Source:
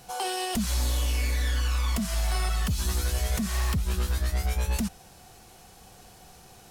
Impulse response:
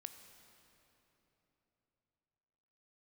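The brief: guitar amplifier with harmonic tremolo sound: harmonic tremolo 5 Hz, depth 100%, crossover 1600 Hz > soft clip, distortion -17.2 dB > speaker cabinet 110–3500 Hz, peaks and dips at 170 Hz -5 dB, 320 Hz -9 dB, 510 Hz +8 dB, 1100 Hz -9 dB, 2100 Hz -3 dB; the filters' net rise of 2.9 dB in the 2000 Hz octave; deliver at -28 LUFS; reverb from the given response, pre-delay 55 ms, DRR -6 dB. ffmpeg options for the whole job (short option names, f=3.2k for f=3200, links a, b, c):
-filter_complex "[0:a]equalizer=f=2k:t=o:g=6,asplit=2[a][b];[1:a]atrim=start_sample=2205,adelay=55[c];[b][c]afir=irnorm=-1:irlink=0,volume=11dB[d];[a][d]amix=inputs=2:normalize=0,acrossover=split=1600[e][f];[e]aeval=exprs='val(0)*(1-1/2+1/2*cos(2*PI*5*n/s))':c=same[g];[f]aeval=exprs='val(0)*(1-1/2-1/2*cos(2*PI*5*n/s))':c=same[h];[g][h]amix=inputs=2:normalize=0,asoftclip=threshold=-15.5dB,highpass=110,equalizer=f=170:t=q:w=4:g=-5,equalizer=f=320:t=q:w=4:g=-9,equalizer=f=510:t=q:w=4:g=8,equalizer=f=1.1k:t=q:w=4:g=-9,equalizer=f=2.1k:t=q:w=4:g=-3,lowpass=f=3.5k:w=0.5412,lowpass=f=3.5k:w=1.3066,volume=4.5dB"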